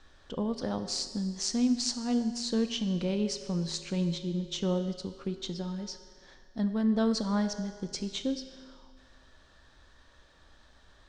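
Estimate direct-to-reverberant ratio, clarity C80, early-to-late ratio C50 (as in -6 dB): 9.0 dB, 11.0 dB, 10.0 dB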